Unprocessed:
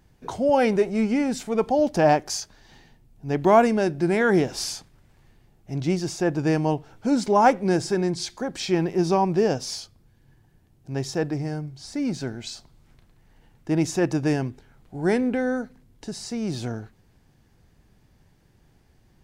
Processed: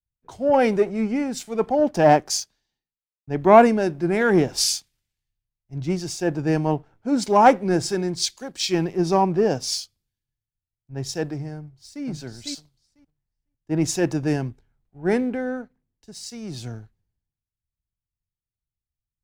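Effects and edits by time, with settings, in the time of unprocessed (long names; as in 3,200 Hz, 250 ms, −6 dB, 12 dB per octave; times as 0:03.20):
0:02.11–0:03.27: fade out and dull
0:11.57–0:12.04: delay throw 500 ms, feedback 30%, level −2 dB
whole clip: leveller curve on the samples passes 1; multiband upward and downward expander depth 100%; level −3.5 dB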